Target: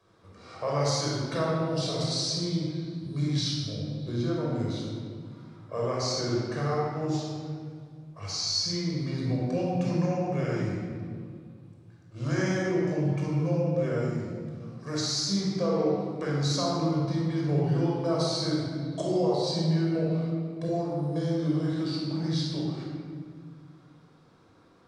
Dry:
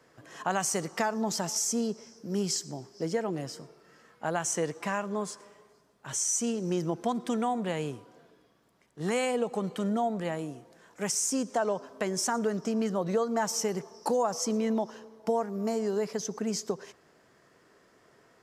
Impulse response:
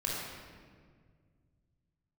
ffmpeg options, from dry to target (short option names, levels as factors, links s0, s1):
-filter_complex "[0:a]asetrate=32667,aresample=44100[s0];[1:a]atrim=start_sample=2205[s1];[s0][s1]afir=irnorm=-1:irlink=0,volume=0.596"